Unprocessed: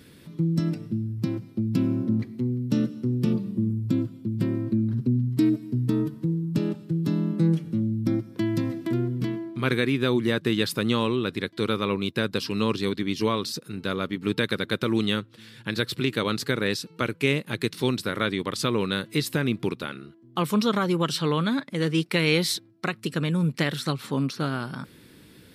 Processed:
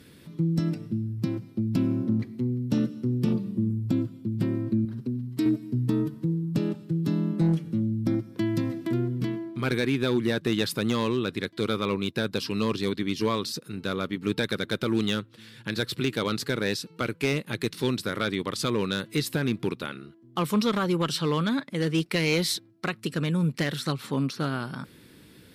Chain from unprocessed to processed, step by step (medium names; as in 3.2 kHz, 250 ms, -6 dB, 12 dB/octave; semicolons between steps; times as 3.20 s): 4.85–5.46 s: bass shelf 230 Hz -11 dB; one-sided clip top -16 dBFS; trim -1 dB